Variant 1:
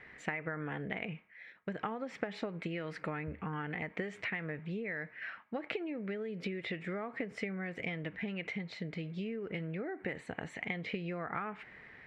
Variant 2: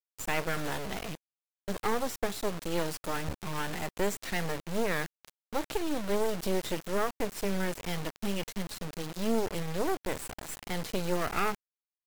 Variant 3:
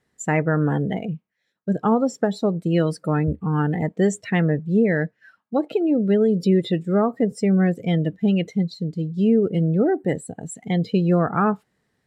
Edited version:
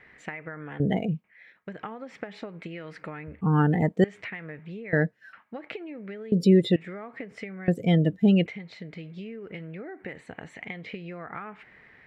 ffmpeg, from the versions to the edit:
-filter_complex "[2:a]asplit=5[a][b][c][d][e];[0:a]asplit=6[f][g][h][i][j][k];[f]atrim=end=0.802[l];[a]atrim=start=0.798:end=1.242[m];[g]atrim=start=1.238:end=3.412[n];[b]atrim=start=3.408:end=4.042[o];[h]atrim=start=4.038:end=4.932[p];[c]atrim=start=4.928:end=5.332[q];[i]atrim=start=5.328:end=6.322[r];[d]atrim=start=6.318:end=6.762[s];[j]atrim=start=6.758:end=7.682[t];[e]atrim=start=7.678:end=8.462[u];[k]atrim=start=8.458[v];[l][m]acrossfade=d=0.004:c1=hsin:c2=hsin[w];[w][n]acrossfade=d=0.004:c1=hsin:c2=hsin[x];[x][o]acrossfade=d=0.004:c1=hsin:c2=hsin[y];[y][p]acrossfade=d=0.004:c1=hsin:c2=hsin[z];[z][q]acrossfade=d=0.004:c1=hsin:c2=hsin[aa];[aa][r]acrossfade=d=0.004:c1=hsin:c2=hsin[ab];[ab][s]acrossfade=d=0.004:c1=hsin:c2=hsin[ac];[ac][t]acrossfade=d=0.004:c1=hsin:c2=hsin[ad];[ad][u]acrossfade=d=0.004:c1=hsin:c2=hsin[ae];[ae][v]acrossfade=d=0.004:c1=hsin:c2=hsin"

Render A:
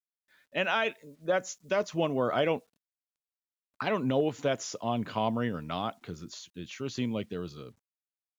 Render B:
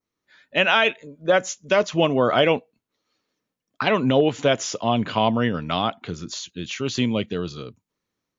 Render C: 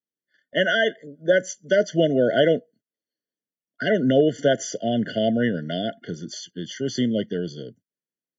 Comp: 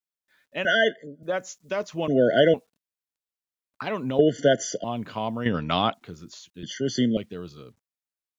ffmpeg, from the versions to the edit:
-filter_complex "[2:a]asplit=4[a][b][c][d];[0:a]asplit=6[e][f][g][h][i][j];[e]atrim=end=0.652[k];[a]atrim=start=0.648:end=1.232[l];[f]atrim=start=1.228:end=2.082[m];[b]atrim=start=2.078:end=2.542[n];[g]atrim=start=2.538:end=4.192[o];[c]atrim=start=4.188:end=4.842[p];[h]atrim=start=4.838:end=5.462[q];[1:a]atrim=start=5.458:end=5.942[r];[i]atrim=start=5.938:end=6.632[s];[d]atrim=start=6.628:end=7.172[t];[j]atrim=start=7.168[u];[k][l]acrossfade=d=0.004:c1=hsin:c2=hsin[v];[v][m]acrossfade=d=0.004:c1=hsin:c2=hsin[w];[w][n]acrossfade=d=0.004:c1=hsin:c2=hsin[x];[x][o]acrossfade=d=0.004:c1=hsin:c2=hsin[y];[y][p]acrossfade=d=0.004:c1=hsin:c2=hsin[z];[z][q]acrossfade=d=0.004:c1=hsin:c2=hsin[aa];[aa][r]acrossfade=d=0.004:c1=hsin:c2=hsin[ab];[ab][s]acrossfade=d=0.004:c1=hsin:c2=hsin[ac];[ac][t]acrossfade=d=0.004:c1=hsin:c2=hsin[ad];[ad][u]acrossfade=d=0.004:c1=hsin:c2=hsin"

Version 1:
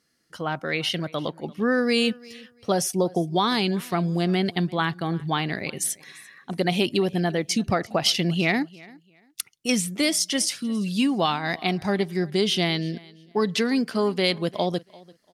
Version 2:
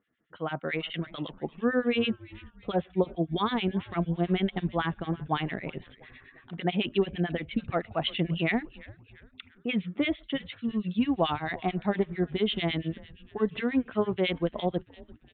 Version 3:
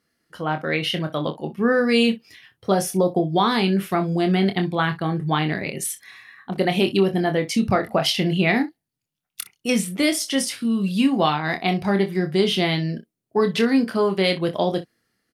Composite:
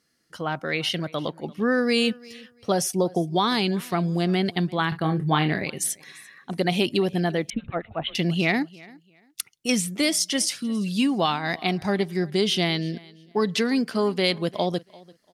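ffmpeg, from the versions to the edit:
-filter_complex "[0:a]asplit=3[a][b][c];[a]atrim=end=4.922[d];[2:a]atrim=start=4.918:end=5.652[e];[b]atrim=start=5.648:end=7.502[f];[1:a]atrim=start=7.498:end=8.152[g];[c]atrim=start=8.148[h];[d][e]acrossfade=d=0.004:c1=hsin:c2=hsin[i];[i][f]acrossfade=d=0.004:c1=hsin:c2=hsin[j];[j][g]acrossfade=d=0.004:c1=hsin:c2=hsin[k];[k][h]acrossfade=d=0.004:c1=hsin:c2=hsin"

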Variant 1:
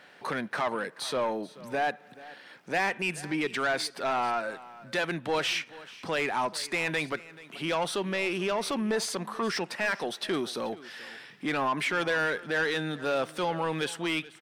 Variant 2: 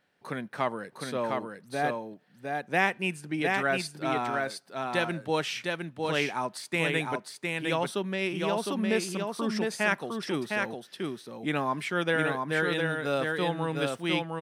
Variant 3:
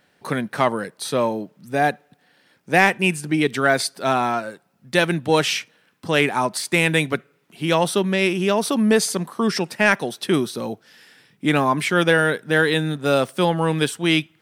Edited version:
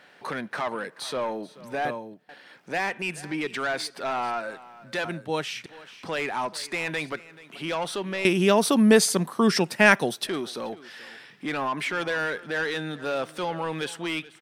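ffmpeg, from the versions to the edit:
-filter_complex "[1:a]asplit=2[a][b];[0:a]asplit=4[c][d][e][f];[c]atrim=end=1.852[g];[a]atrim=start=1.848:end=2.292[h];[d]atrim=start=2.288:end=5.052[i];[b]atrim=start=5.048:end=5.662[j];[e]atrim=start=5.658:end=8.252[k];[2:a]atrim=start=8.248:end=10.272[l];[f]atrim=start=10.268[m];[g][h]acrossfade=d=0.004:c1=hsin:c2=hsin[n];[n][i]acrossfade=d=0.004:c1=hsin:c2=hsin[o];[o][j]acrossfade=d=0.004:c1=hsin:c2=hsin[p];[p][k]acrossfade=d=0.004:c1=hsin:c2=hsin[q];[q][l]acrossfade=d=0.004:c1=hsin:c2=hsin[r];[r][m]acrossfade=d=0.004:c1=hsin:c2=hsin"

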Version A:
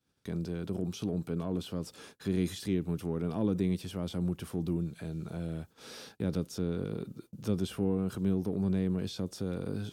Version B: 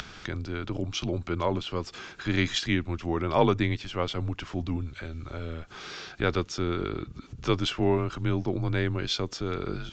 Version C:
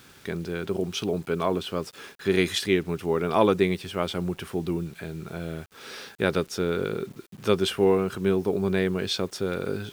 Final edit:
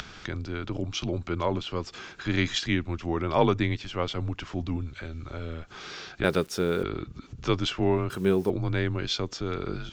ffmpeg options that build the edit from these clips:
-filter_complex "[2:a]asplit=2[a][b];[1:a]asplit=3[c][d][e];[c]atrim=end=6.242[f];[a]atrim=start=6.238:end=6.832[g];[d]atrim=start=6.828:end=8.102[h];[b]atrim=start=8.098:end=8.502[i];[e]atrim=start=8.498[j];[f][g]acrossfade=d=0.004:c1=hsin:c2=hsin[k];[k][h]acrossfade=d=0.004:c1=hsin:c2=hsin[l];[l][i]acrossfade=d=0.004:c1=hsin:c2=hsin[m];[m][j]acrossfade=d=0.004:c1=hsin:c2=hsin"

